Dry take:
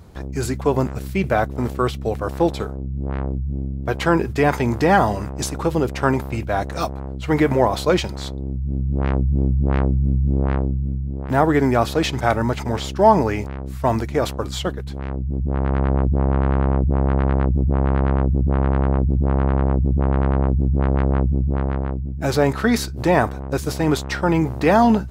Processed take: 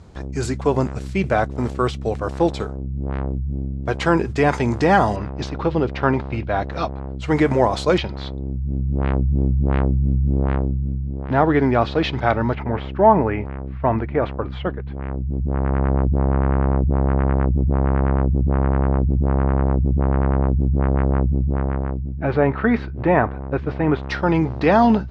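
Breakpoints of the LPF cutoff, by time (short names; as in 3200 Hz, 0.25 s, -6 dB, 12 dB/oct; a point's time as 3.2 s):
LPF 24 dB/oct
8500 Hz
from 5.16 s 4300 Hz
from 7.19 s 8500 Hz
from 7.98 s 4100 Hz
from 12.55 s 2500 Hz
from 24.03 s 4900 Hz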